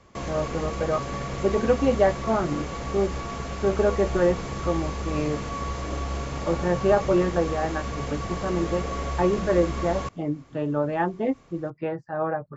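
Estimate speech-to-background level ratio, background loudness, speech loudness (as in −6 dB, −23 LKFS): 5.5 dB, −32.0 LKFS, −26.5 LKFS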